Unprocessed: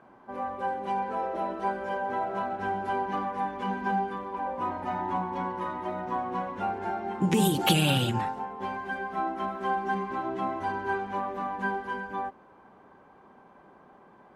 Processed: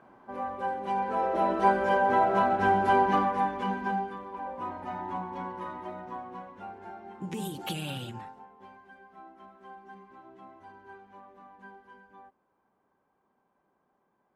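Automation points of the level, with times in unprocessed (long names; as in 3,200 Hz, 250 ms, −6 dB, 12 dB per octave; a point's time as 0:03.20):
0:00.85 −1 dB
0:01.61 +7 dB
0:03.08 +7 dB
0:04.17 −5 dB
0:05.76 −5 dB
0:06.54 −12 dB
0:08.08 −12 dB
0:08.92 −19.5 dB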